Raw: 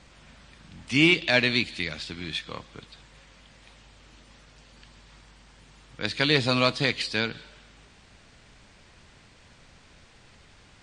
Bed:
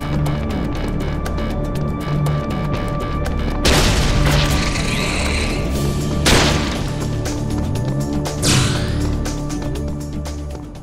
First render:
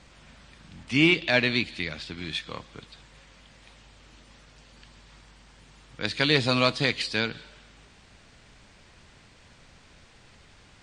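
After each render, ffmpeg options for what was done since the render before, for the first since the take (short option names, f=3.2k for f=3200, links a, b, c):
-filter_complex "[0:a]asettb=1/sr,asplit=3[a][b][c];[a]atrim=end=0.834[d];[b]atrim=start=0.83:end=2.18,asetpts=PTS-STARTPTS,afade=t=in:d=0.004:c=qsin,afade=t=out:st=1.346:d=0.004:c=qsin,highshelf=f=5.1k:g=-7[e];[c]atrim=start=2.176[f];[d][e]acrossfade=d=0.004:c1=hsin:c2=qsin[g];[g][f]acrossfade=d=0.004:c1=qsin:c2=hsin"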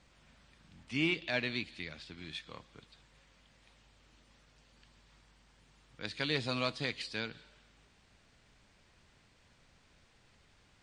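-af "volume=-11.5dB"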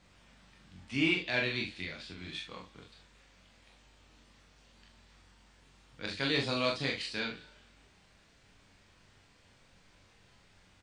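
-filter_complex "[0:a]asplit=2[a][b];[b]adelay=43,volume=-5dB[c];[a][c]amix=inputs=2:normalize=0,aecho=1:1:22|32:0.531|0.501"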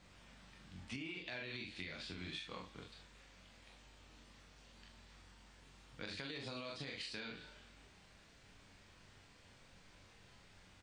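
-af "alimiter=level_in=2.5dB:limit=-24dB:level=0:latency=1:release=108,volume=-2.5dB,acompressor=threshold=-42dB:ratio=12"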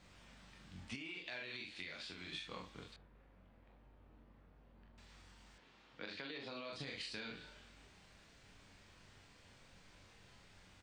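-filter_complex "[0:a]asettb=1/sr,asplit=3[a][b][c];[a]atrim=end=0.954[d];[b]atrim=start=0.95:end=2.32,asetpts=PTS-STARTPTS,afade=t=in:d=0.004:c=qsin,afade=t=out:st=1.366:d=0.004:c=qsin,lowshelf=f=270:g=-10.5[e];[c]atrim=start=2.316[f];[d][e]acrossfade=d=0.004:c1=hsin:c2=qsin[g];[g][f]acrossfade=d=0.004:c1=qsin:c2=hsin,asettb=1/sr,asplit=3[h][i][j];[h]atrim=end=2.964[k];[i]atrim=start=2.96:end=4.98,asetpts=PTS-STARTPTS,afade=t=in:d=0.004:c=qsin,afade=t=out:st=2.016:d=0.004:c=qsin,adynamicsmooth=sensitivity=7.5:basefreq=1.1k[l];[j]atrim=start=4.976[m];[k][l]acrossfade=d=0.004:c1=hsin:c2=qsin[n];[n][m]acrossfade=d=0.004:c1=qsin:c2=hsin,asettb=1/sr,asplit=3[o][p][q];[o]atrim=end=5.584[r];[p]atrim=start=5.58:end=6.73,asetpts=PTS-STARTPTS,afade=t=in:d=0.004:c=qsin,afade=t=out:st=1.146:d=0.004:c=qsin,acrossover=split=200 4900:gain=0.224 1 0.112[s][t][u];[s][t][u]amix=inputs=3:normalize=0[v];[q]atrim=start=6.726[w];[r][v]acrossfade=d=0.004:c1=hsin:c2=qsin[x];[x][w]acrossfade=d=0.004:c1=qsin:c2=hsin"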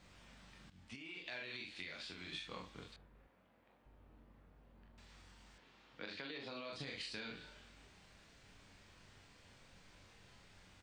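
-filter_complex "[0:a]asettb=1/sr,asplit=3[a][b][c];[a]atrim=end=3.274[d];[b]atrim=start=3.27:end=3.86,asetpts=PTS-STARTPTS,afade=t=in:d=0.004:c=qsin,afade=t=out:st=0.586:d=0.004:c=qsin,highpass=f=330:p=1[e];[c]atrim=start=3.856[f];[d][e]acrossfade=d=0.004:c1=hsin:c2=qsin[g];[g][f]acrossfade=d=0.004:c1=qsin:c2=hsin,asplit=2[h][i];[h]atrim=end=0.7,asetpts=PTS-STARTPTS,afade=t=out:st=0.696:d=0.004:c=hsin:silence=0.211349[j];[i]atrim=start=0.7,asetpts=PTS-STARTPTS,afade=t=in:d=0.59:silence=0.211349[k];[j][k]concat=n=2:v=0:a=1"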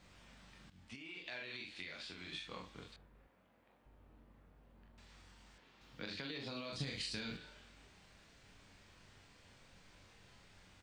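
-filter_complex "[0:a]asettb=1/sr,asplit=3[a][b][c];[a]atrim=end=5.814[d];[b]atrim=start=5.81:end=7.37,asetpts=PTS-STARTPTS,afade=t=in:d=0.004:c=qsin,afade=t=out:st=1.556:d=0.004:c=qsin,bass=f=250:g=10,treble=f=4k:g=8[e];[c]atrim=start=7.366[f];[d][e]acrossfade=d=0.004:c1=hsin:c2=qsin[g];[g][f]acrossfade=d=0.004:c1=qsin:c2=hsin"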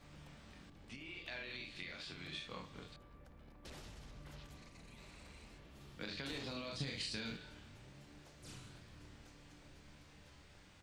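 -filter_complex "[1:a]volume=-39.5dB[a];[0:a][a]amix=inputs=2:normalize=0"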